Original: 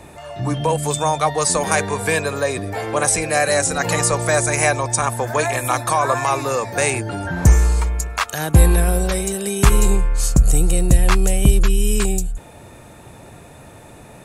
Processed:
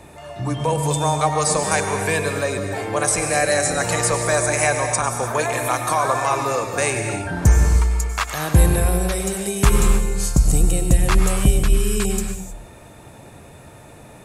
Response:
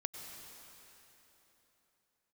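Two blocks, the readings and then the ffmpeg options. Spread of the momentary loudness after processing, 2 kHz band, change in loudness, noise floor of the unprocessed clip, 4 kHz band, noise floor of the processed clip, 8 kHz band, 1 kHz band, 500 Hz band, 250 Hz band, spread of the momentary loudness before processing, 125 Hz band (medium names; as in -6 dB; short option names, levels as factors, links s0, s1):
7 LU, -1.5 dB, -1.5 dB, -42 dBFS, -1.5 dB, -43 dBFS, -1.5 dB, -1.0 dB, -1.0 dB, -1.0 dB, 7 LU, -1.5 dB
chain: -filter_complex "[1:a]atrim=start_sample=2205,afade=t=out:st=0.37:d=0.01,atrim=end_sample=16758[s0];[0:a][s0]afir=irnorm=-1:irlink=0"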